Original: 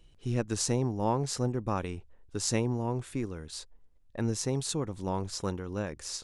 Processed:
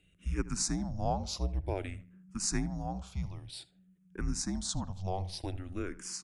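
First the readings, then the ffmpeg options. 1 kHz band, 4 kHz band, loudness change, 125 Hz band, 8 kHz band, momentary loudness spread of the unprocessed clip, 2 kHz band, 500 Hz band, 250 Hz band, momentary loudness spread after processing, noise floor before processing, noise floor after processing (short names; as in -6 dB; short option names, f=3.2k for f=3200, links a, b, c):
-4.0 dB, -2.5 dB, -3.5 dB, -4.5 dB, -1.5 dB, 12 LU, -3.0 dB, -8.0 dB, -4.5 dB, 12 LU, -59 dBFS, -67 dBFS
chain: -filter_complex "[0:a]afreqshift=-190,asplit=2[a][b];[b]adelay=78,lowpass=f=2.6k:p=1,volume=-16.5dB,asplit=2[c][d];[d]adelay=78,lowpass=f=2.6k:p=1,volume=0.35,asplit=2[e][f];[f]adelay=78,lowpass=f=2.6k:p=1,volume=0.35[g];[a][c][e][g]amix=inputs=4:normalize=0,asplit=2[h][i];[i]afreqshift=-0.53[j];[h][j]amix=inputs=2:normalize=1"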